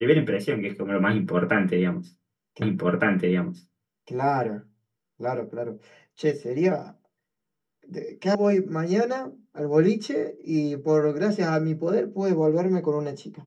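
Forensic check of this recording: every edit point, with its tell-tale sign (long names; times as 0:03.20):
0:02.62: the same again, the last 1.51 s
0:08.35: cut off before it has died away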